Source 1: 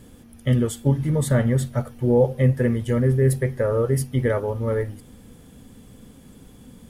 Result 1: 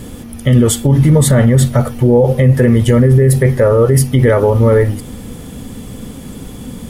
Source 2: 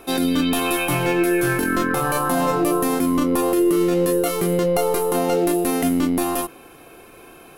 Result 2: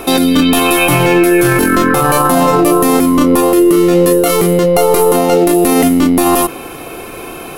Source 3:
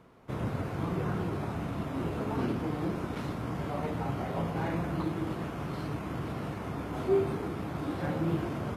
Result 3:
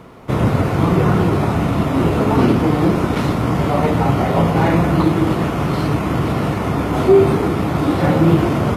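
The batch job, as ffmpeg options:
-af "bandreject=f=1.6k:w=17,alimiter=level_in=18.5dB:limit=-1dB:release=50:level=0:latency=1,volume=-1dB"

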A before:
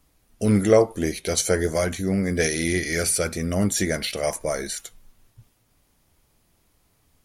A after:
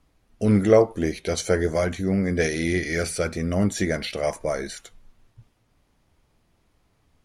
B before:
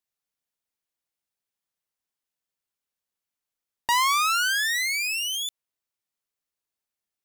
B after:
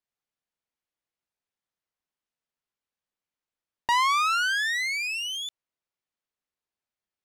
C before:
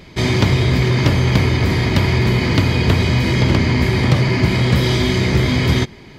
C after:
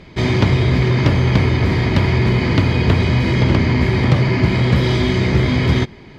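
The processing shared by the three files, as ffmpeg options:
-af "aemphasis=mode=reproduction:type=50fm"

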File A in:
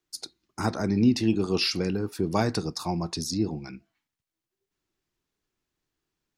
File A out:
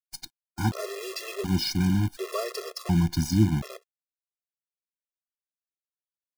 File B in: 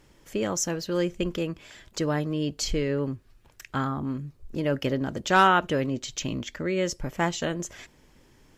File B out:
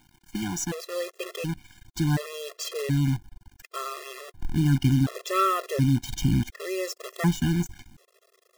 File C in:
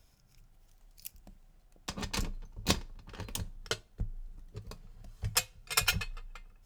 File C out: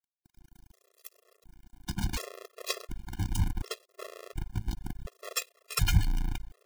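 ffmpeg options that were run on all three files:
-af "asubboost=boost=5.5:cutoff=220,acrusher=bits=6:dc=4:mix=0:aa=0.000001,afftfilt=real='re*gt(sin(2*PI*0.69*pts/sr)*(1-2*mod(floor(b*sr/1024/350),2)),0)':imag='im*gt(sin(2*PI*0.69*pts/sr)*(1-2*mod(floor(b*sr/1024/350),2)),0)':win_size=1024:overlap=0.75"

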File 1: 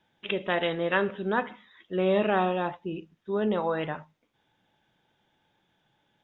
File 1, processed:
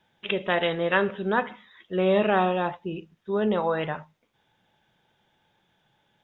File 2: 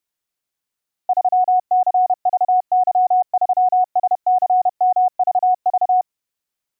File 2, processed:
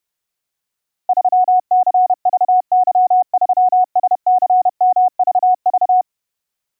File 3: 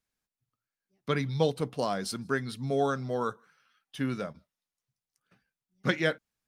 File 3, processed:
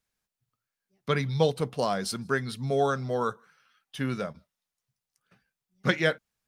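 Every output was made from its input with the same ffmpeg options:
-af "equalizer=f=290:w=4:g=-5.5,volume=3dB"

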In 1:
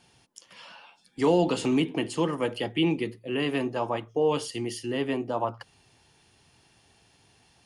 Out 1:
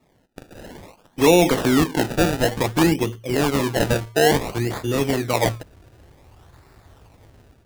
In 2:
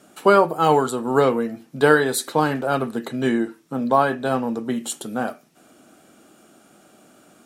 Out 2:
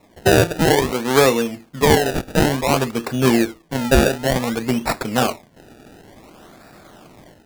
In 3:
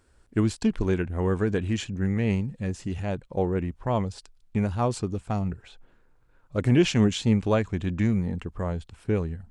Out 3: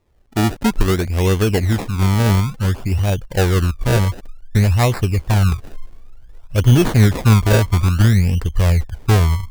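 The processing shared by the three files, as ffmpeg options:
-af "asubboost=boost=6.5:cutoff=87,dynaudnorm=f=220:g=3:m=9dB,acrusher=samples=28:mix=1:aa=0.000001:lfo=1:lforange=28:lforate=0.56"

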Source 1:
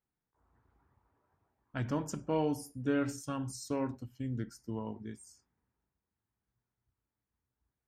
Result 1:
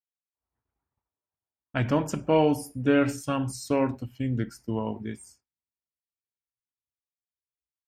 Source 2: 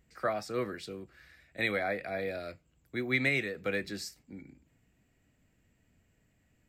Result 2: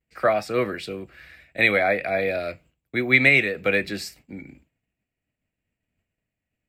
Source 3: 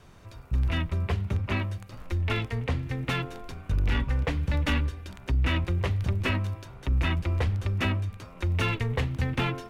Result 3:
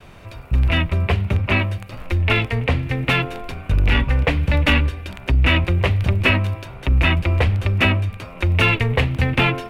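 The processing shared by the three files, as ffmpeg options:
-af "equalizer=f=630:t=o:w=0.67:g=4,equalizer=f=2.5k:t=o:w=0.67:g=7,equalizer=f=6.3k:t=o:w=0.67:g=-5,agate=range=-33dB:threshold=-55dB:ratio=3:detection=peak,volume=8.5dB"

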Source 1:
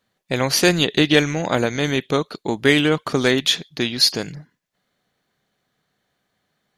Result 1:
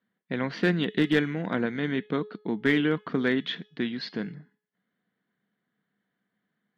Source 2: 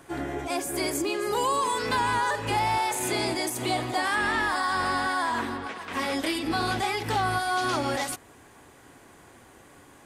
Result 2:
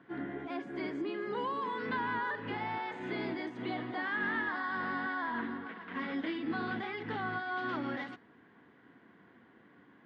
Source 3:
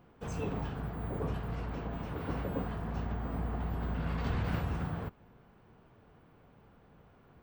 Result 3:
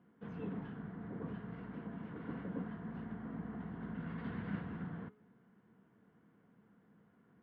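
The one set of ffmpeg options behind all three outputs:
-af "highpass=190,equalizer=f=200:t=q:w=4:g=8,equalizer=f=380:t=q:w=4:g=-4,equalizer=f=580:t=q:w=4:g=-10,equalizer=f=820:t=q:w=4:g=-9,equalizer=f=1.2k:t=q:w=4:g=-6,equalizer=f=2.5k:t=q:w=4:g=-10,lowpass=f=2.7k:w=0.5412,lowpass=f=2.7k:w=1.3066,aeval=exprs='clip(val(0),-1,0.2)':c=same,bandreject=f=423:t=h:w=4,bandreject=f=846:t=h:w=4,bandreject=f=1.269k:t=h:w=4,bandreject=f=1.692k:t=h:w=4,bandreject=f=2.115k:t=h:w=4,bandreject=f=2.538k:t=h:w=4,bandreject=f=2.961k:t=h:w=4,bandreject=f=3.384k:t=h:w=4,bandreject=f=3.807k:t=h:w=4,bandreject=f=4.23k:t=h:w=4,bandreject=f=4.653k:t=h:w=4,bandreject=f=5.076k:t=h:w=4,bandreject=f=5.499k:t=h:w=4,bandreject=f=5.922k:t=h:w=4,bandreject=f=6.345k:t=h:w=4,bandreject=f=6.768k:t=h:w=4,bandreject=f=7.191k:t=h:w=4,bandreject=f=7.614k:t=h:w=4,bandreject=f=8.037k:t=h:w=4,bandreject=f=8.46k:t=h:w=4,bandreject=f=8.883k:t=h:w=4,bandreject=f=9.306k:t=h:w=4,bandreject=f=9.729k:t=h:w=4,bandreject=f=10.152k:t=h:w=4,bandreject=f=10.575k:t=h:w=4,bandreject=f=10.998k:t=h:w=4,bandreject=f=11.421k:t=h:w=4,bandreject=f=11.844k:t=h:w=4,bandreject=f=12.267k:t=h:w=4,bandreject=f=12.69k:t=h:w=4,volume=-4dB"

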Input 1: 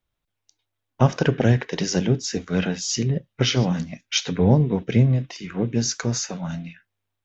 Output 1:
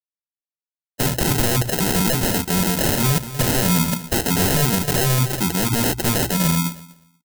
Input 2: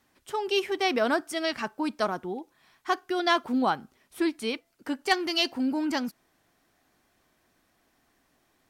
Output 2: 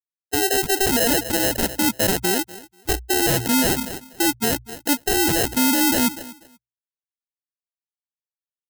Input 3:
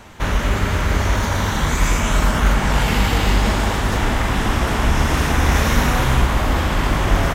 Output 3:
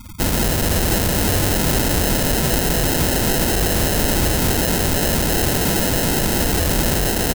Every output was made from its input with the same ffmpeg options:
-filter_complex "[0:a]aeval=exprs='0.126*(abs(mod(val(0)/0.126+3,4)-2)-1)':c=same,afftfilt=real='re*gte(hypot(re,im),0.0316)':imag='im*gte(hypot(re,im),0.0316)':win_size=1024:overlap=0.75,dynaudnorm=f=160:g=13:m=4.5dB,acrusher=samples=38:mix=1:aa=0.000001,crystalizer=i=3:c=0,bandreject=f=60:t=h:w=6,bandreject=f=120:t=h:w=6,asplit=2[a][b];[b]aecho=0:1:243|486:0.0708|0.0127[c];[a][c]amix=inputs=2:normalize=0,alimiter=level_in=11.5dB:limit=-1dB:release=50:level=0:latency=1,volume=-1dB"

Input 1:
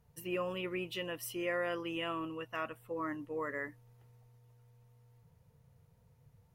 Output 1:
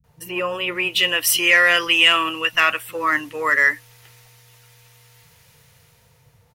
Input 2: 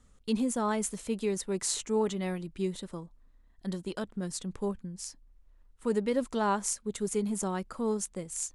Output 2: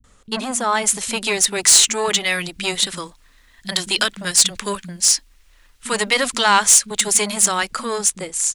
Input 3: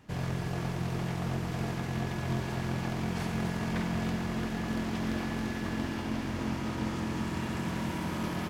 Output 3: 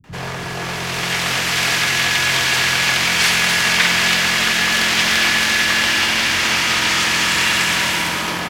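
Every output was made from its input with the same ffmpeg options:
-filter_complex "[0:a]lowshelf=f=220:g=9,acrossover=split=740|1700[a][b][c];[a]asoftclip=type=tanh:threshold=-29.5dB[d];[c]dynaudnorm=f=290:g=7:m=16dB[e];[d][b][e]amix=inputs=3:normalize=0,asplit=2[f][g];[g]highpass=f=720:p=1,volume=19dB,asoftclip=type=tanh:threshold=-1.5dB[h];[f][h]amix=inputs=2:normalize=0,lowpass=f=7.7k:p=1,volume=-6dB,acrossover=split=210[i][j];[j]adelay=40[k];[i][k]amix=inputs=2:normalize=0,volume=2dB"

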